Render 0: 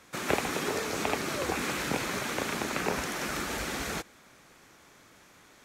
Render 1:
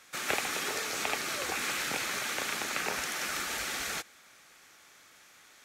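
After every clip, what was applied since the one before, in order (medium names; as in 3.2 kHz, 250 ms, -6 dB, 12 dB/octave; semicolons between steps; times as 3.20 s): tilt shelf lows -7.5 dB, about 660 Hz; band-stop 1 kHz, Q 12; trim -5 dB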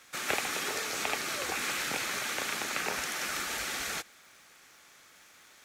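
crackle 430 per s -53 dBFS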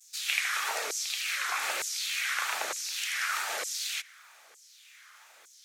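wow and flutter 91 cents; LFO high-pass saw down 1.1 Hz 460–7300 Hz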